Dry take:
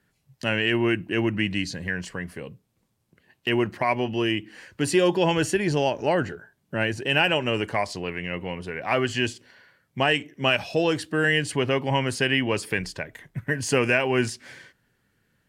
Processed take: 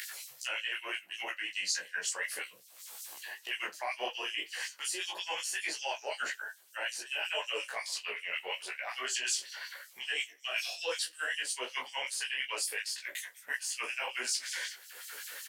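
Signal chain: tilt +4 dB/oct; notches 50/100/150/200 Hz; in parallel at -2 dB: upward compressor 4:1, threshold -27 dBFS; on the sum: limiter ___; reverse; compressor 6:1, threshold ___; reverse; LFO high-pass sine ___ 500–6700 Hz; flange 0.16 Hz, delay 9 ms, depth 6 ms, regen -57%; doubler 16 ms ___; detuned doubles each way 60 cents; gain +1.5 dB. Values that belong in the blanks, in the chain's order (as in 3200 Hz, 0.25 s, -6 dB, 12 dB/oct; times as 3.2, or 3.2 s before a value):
-9.5 dBFS, -30 dBFS, 5.4 Hz, -2 dB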